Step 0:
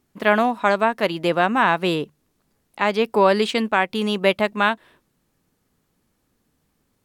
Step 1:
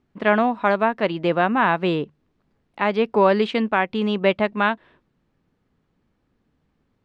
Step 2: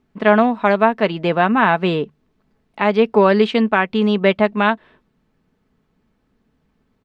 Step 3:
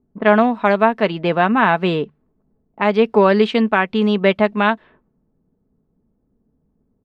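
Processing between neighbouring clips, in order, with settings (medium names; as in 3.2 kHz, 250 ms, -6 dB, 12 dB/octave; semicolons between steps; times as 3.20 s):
low-pass 3.2 kHz 12 dB/octave; bass shelf 380 Hz +3.5 dB; trim -1.5 dB
comb 4.6 ms, depth 34%; trim +3.5 dB
level-controlled noise filter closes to 540 Hz, open at -14 dBFS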